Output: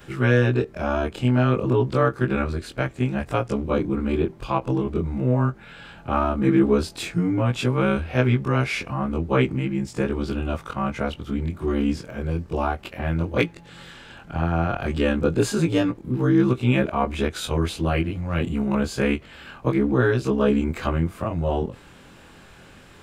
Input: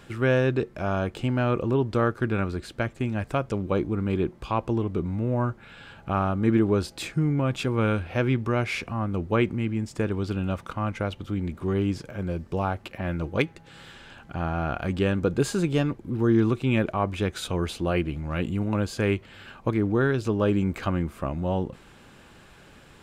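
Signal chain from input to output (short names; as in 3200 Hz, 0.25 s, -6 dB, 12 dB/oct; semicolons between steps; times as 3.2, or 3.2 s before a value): short-time reversal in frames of 48 ms; ending taper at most 410 dB/s; gain +6.5 dB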